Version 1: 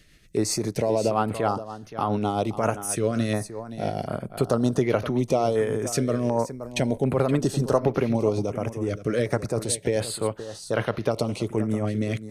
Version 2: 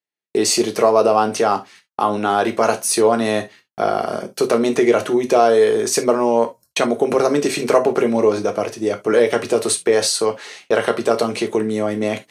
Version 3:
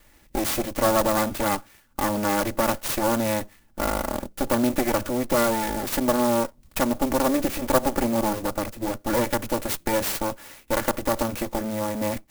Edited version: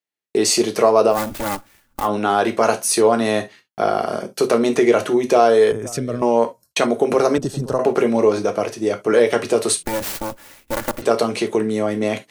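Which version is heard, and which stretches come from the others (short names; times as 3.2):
2
1.15–2.04 from 3, crossfade 0.10 s
5.72–6.22 from 1
7.38–7.79 from 1
9.83–11.02 from 3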